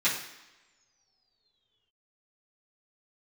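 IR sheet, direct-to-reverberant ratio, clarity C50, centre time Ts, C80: −12.0 dB, 6.0 dB, 34 ms, 9.0 dB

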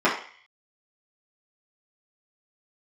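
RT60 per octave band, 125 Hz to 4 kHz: 0.30, 0.35, 0.40, 0.50, 0.65, 0.55 seconds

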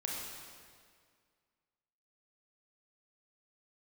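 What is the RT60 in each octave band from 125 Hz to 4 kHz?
2.0, 2.1, 2.0, 1.9, 1.8, 1.7 seconds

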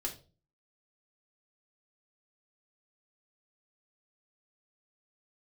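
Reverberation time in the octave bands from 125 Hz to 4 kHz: 0.55, 0.50, 0.40, 0.30, 0.25, 0.30 seconds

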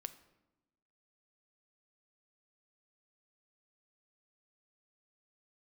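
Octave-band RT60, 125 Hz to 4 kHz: 1.2, 1.3, 1.1, 0.95, 0.75, 0.65 seconds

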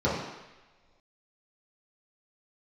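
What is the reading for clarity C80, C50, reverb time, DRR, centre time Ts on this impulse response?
4.5 dB, 1.5 dB, non-exponential decay, −9.5 dB, 61 ms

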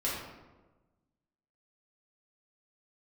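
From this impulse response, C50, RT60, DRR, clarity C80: 1.0 dB, 1.2 s, −7.5 dB, 3.5 dB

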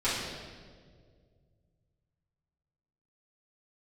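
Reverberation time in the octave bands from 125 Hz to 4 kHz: 3.4, 2.4, 2.3, 1.5, 1.3, 1.3 seconds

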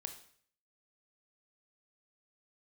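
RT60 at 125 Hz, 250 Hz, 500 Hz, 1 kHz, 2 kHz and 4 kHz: 0.65, 0.60, 0.55, 0.55, 0.55, 0.55 seconds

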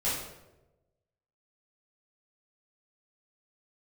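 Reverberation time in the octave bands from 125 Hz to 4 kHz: 1.4, 1.1, 1.2, 0.85, 0.75, 0.60 seconds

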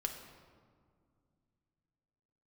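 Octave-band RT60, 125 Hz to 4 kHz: 3.5, 3.2, 2.3, 2.0, 1.3, 1.0 seconds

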